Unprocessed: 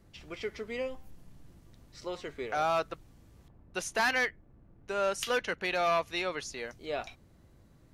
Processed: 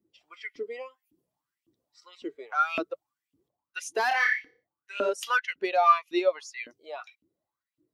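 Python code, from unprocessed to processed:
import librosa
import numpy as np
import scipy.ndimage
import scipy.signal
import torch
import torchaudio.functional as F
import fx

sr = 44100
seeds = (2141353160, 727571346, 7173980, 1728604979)

y = fx.bin_expand(x, sr, power=1.5)
y = fx.room_flutter(y, sr, wall_m=5.1, rt60_s=0.41, at=(4.08, 5.09))
y = fx.filter_lfo_highpass(y, sr, shape='saw_up', hz=1.8, low_hz=270.0, high_hz=2900.0, q=7.5)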